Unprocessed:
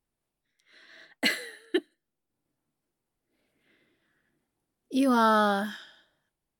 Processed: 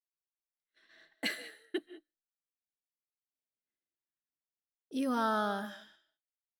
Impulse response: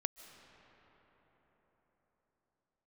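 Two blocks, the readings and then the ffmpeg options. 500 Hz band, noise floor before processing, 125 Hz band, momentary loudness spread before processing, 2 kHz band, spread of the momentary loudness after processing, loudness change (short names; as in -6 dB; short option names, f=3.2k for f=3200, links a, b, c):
-9.0 dB, -85 dBFS, n/a, 14 LU, -9.0 dB, 13 LU, -9.0 dB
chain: -filter_complex "[0:a]agate=range=-26dB:threshold=-55dB:ratio=16:detection=peak[a];[1:a]atrim=start_sample=2205,afade=t=out:st=0.26:d=0.01,atrim=end_sample=11907[b];[a][b]afir=irnorm=-1:irlink=0,volume=-8dB"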